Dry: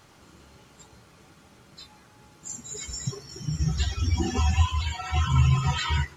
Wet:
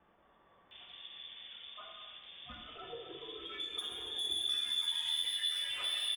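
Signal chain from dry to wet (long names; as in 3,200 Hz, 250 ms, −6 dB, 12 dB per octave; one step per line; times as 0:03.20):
pitch shifter −10 semitones
brickwall limiter −20 dBFS, peak gain reduction 8.5 dB
voice inversion scrambler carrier 3,500 Hz
soft clipping −27 dBFS, distortion −9 dB
low-shelf EQ 240 Hz −7 dB
noise gate with hold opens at −45 dBFS
multiband delay without the direct sound lows, highs 710 ms, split 1,300 Hz
reverb whose tail is shaped and stops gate 480 ms falling, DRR −0.5 dB
downward compressor 1.5 to 1, threshold −48 dBFS, peak gain reduction 9.5 dB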